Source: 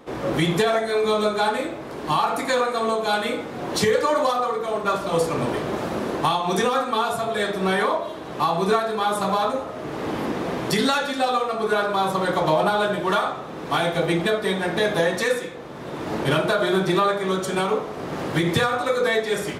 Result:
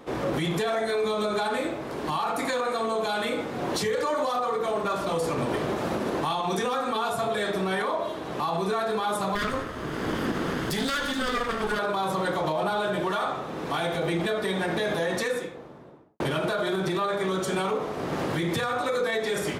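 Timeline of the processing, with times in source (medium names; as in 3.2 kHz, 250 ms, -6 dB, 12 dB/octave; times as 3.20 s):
9.35–11.79 s: comb filter that takes the minimum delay 0.61 ms
15.06–16.20 s: studio fade out
whole clip: peak limiter -19 dBFS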